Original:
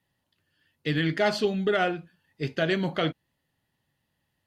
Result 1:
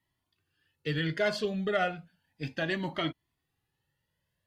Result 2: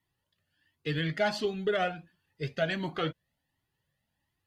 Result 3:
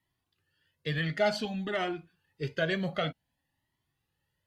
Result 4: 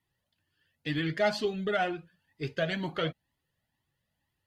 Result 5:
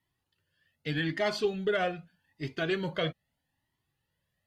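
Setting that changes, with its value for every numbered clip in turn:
Shepard-style flanger, rate: 0.33 Hz, 1.4 Hz, 0.54 Hz, 2.1 Hz, 0.81 Hz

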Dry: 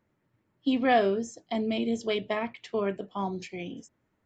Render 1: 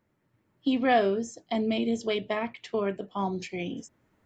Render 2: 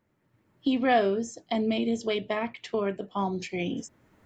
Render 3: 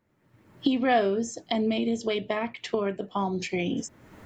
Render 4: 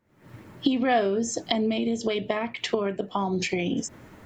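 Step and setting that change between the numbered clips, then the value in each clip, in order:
recorder AGC, rising by: 5.3 dB/s, 13 dB/s, 35 dB/s, 89 dB/s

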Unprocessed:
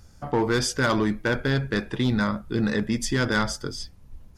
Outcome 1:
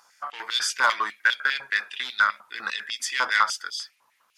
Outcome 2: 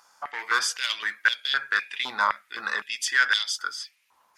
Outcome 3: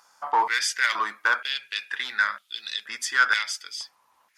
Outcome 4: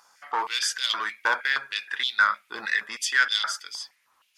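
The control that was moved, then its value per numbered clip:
step-sequenced high-pass, rate: 10 Hz, 3.9 Hz, 2.1 Hz, 6.4 Hz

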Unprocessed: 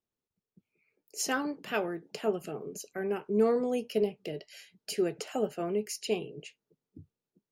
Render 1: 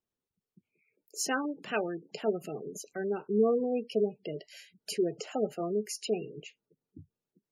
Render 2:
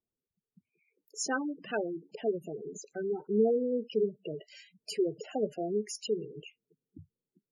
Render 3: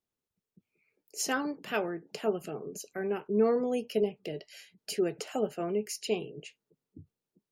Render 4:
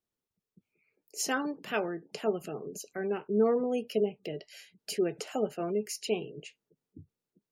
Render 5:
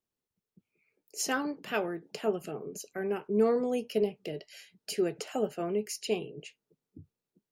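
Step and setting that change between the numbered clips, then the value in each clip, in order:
spectral gate, under each frame's peak: -20 dB, -10 dB, -45 dB, -35 dB, -60 dB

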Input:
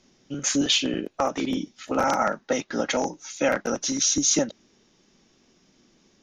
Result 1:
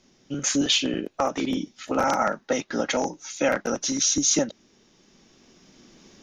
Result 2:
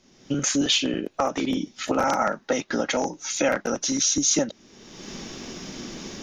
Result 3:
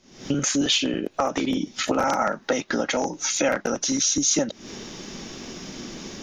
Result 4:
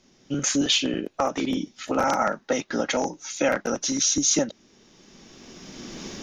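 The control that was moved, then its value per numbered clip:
recorder AGC, rising by: 5.5 dB/s, 36 dB/s, 91 dB/s, 15 dB/s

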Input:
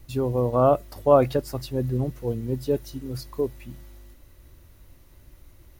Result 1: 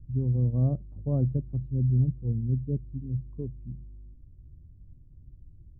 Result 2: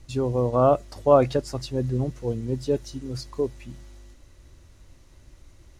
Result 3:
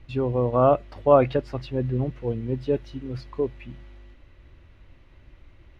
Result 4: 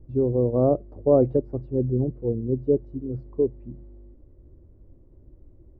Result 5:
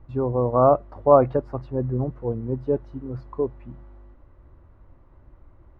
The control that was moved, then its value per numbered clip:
resonant low-pass, frequency: 160 Hz, 7.1 kHz, 2.7 kHz, 410 Hz, 1.1 kHz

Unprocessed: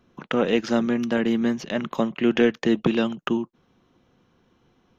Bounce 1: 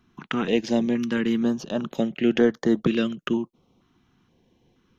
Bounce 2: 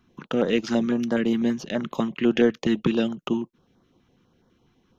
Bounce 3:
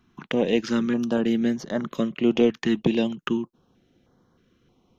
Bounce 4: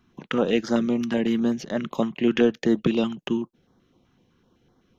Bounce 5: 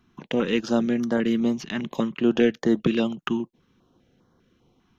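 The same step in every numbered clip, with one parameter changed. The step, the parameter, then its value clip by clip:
step-sequenced notch, rate: 2.1 Hz, 12 Hz, 3.2 Hz, 7.9 Hz, 5 Hz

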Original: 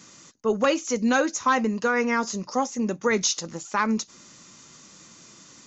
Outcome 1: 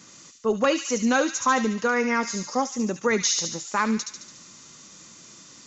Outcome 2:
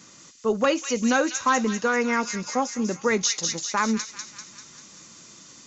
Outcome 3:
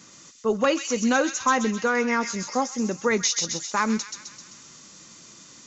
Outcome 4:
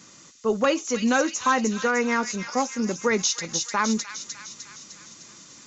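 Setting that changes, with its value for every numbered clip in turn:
feedback echo behind a high-pass, time: 72 ms, 196 ms, 130 ms, 303 ms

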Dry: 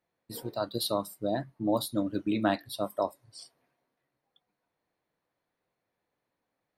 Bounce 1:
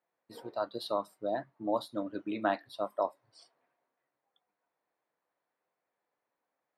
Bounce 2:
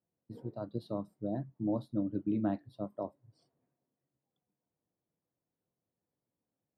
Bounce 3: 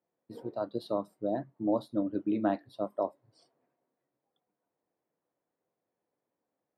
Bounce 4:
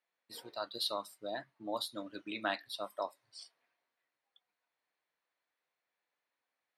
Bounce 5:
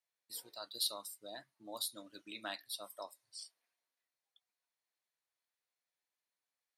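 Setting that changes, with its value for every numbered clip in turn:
band-pass filter, frequency: 1 kHz, 140 Hz, 390 Hz, 2.6 kHz, 7.2 kHz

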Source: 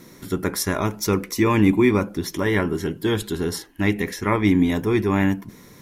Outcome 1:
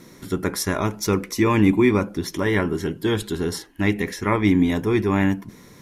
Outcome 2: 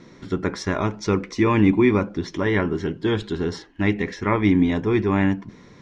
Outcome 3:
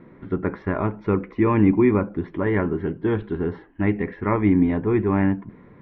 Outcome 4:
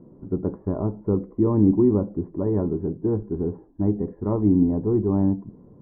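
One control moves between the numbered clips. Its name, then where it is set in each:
Bessel low-pass, frequency: 12 kHz, 4 kHz, 1.5 kHz, 550 Hz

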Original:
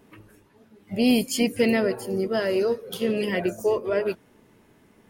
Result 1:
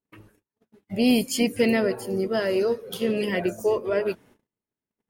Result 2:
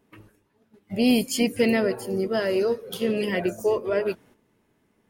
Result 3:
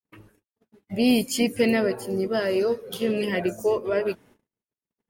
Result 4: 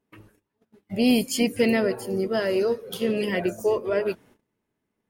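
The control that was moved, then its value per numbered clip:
gate, range: -36 dB, -10 dB, -59 dB, -22 dB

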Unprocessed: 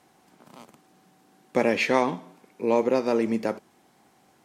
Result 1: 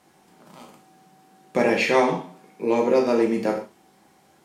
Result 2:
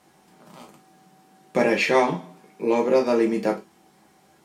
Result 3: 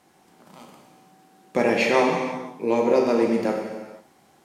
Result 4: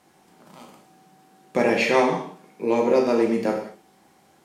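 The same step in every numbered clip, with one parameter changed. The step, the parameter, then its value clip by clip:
gated-style reverb, gate: 170 ms, 80 ms, 520 ms, 250 ms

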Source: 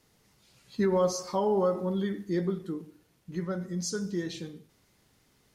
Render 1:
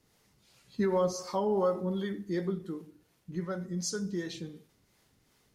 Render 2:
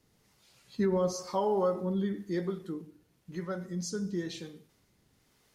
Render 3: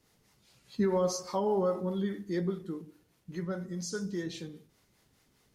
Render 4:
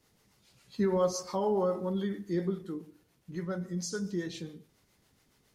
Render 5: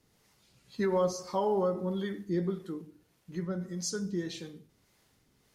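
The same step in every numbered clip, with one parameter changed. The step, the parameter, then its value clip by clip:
harmonic tremolo, rate: 2.7 Hz, 1 Hz, 4.9 Hz, 7.2 Hz, 1.7 Hz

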